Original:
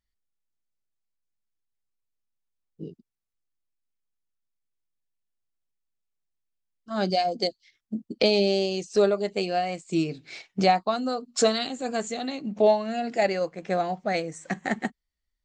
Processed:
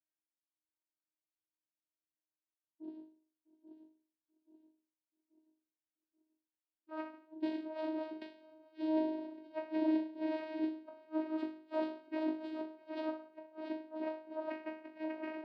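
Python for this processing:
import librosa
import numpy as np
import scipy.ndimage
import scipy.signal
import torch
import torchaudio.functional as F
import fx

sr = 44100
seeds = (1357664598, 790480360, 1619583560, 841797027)

p1 = fx.reverse_delay_fb(x, sr, ms=416, feedback_pct=64, wet_db=-5.5)
p2 = scipy.signal.sosfilt(scipy.signal.butter(16, 3600.0, 'lowpass', fs=sr, output='sos'), p1)
p3 = fx.high_shelf(p2, sr, hz=2800.0, db=3.0)
p4 = fx.gate_flip(p3, sr, shuts_db=-15.0, range_db=-38)
p5 = fx.resonator_bank(p4, sr, root=43, chord='major', decay_s=0.48)
p6 = fx.vocoder(p5, sr, bands=8, carrier='saw', carrier_hz=314.0)
p7 = p6 + fx.echo_single(p6, sr, ms=651, db=-23.5, dry=0)
p8 = fx.sustainer(p7, sr, db_per_s=51.0, at=(8.81, 9.52))
y = p8 * 10.0 ** (10.0 / 20.0)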